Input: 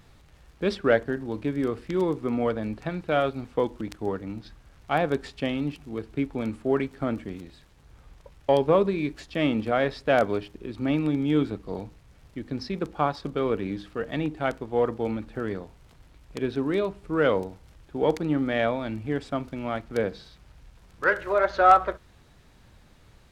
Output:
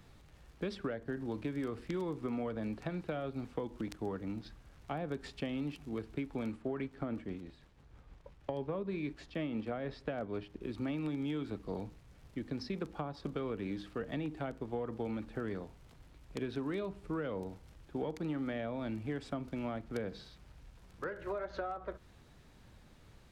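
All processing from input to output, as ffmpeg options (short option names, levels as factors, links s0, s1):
-filter_complex "[0:a]asettb=1/sr,asplit=3[s0][s1][s2];[s0]atrim=end=6.524[s3];[s1]atrim=start=6.52:end=10.61,asetpts=PTS-STARTPTS,afade=t=in:d=0.004:c=qsin,afade=t=out:st=4.086:d=0.004:c=qsin,highshelf=f=6500:g=-11,tremolo=f=6.2:d=0.37[s4];[s2]atrim=start=10.606[s5];[s3][s4]acrossfade=d=0.004:c1=hsin:c2=qsin[s6];[s6][s5]acrossfade=d=0.004:c1=qsin:c2=hsin,acompressor=threshold=0.0631:ratio=6,equalizer=f=240:w=0.6:g=2.5,acrossover=split=250|640[s7][s8][s9];[s7]acompressor=threshold=0.0178:ratio=4[s10];[s8]acompressor=threshold=0.0158:ratio=4[s11];[s9]acompressor=threshold=0.0112:ratio=4[s12];[s10][s11][s12]amix=inputs=3:normalize=0,volume=0.562"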